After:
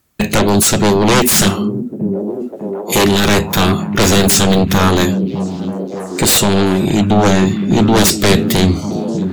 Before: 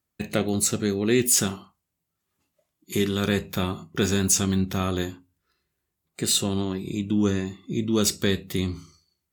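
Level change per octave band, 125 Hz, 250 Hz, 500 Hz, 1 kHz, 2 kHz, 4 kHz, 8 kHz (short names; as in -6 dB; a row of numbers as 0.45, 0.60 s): +13.5, +13.0, +13.5, +20.0, +15.0, +13.0, +9.5 dB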